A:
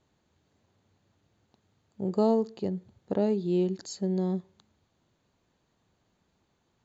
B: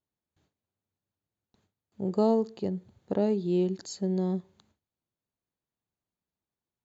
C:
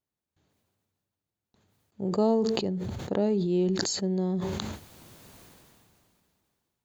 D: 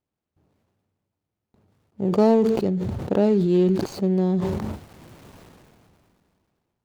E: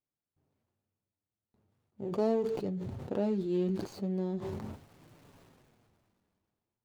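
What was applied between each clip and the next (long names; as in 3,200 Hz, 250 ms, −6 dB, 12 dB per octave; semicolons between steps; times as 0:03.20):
noise gate with hold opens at −58 dBFS
level that may fall only so fast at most 23 dB per second
running median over 25 samples; level +7 dB
flanger 0.39 Hz, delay 6.6 ms, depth 3.2 ms, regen −44%; level −8 dB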